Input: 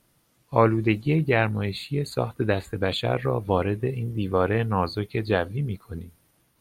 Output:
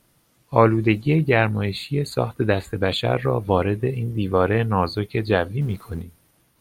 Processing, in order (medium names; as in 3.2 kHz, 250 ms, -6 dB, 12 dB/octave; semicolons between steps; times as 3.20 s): 5.61–6.02 s: companding laws mixed up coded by mu; trim +3.5 dB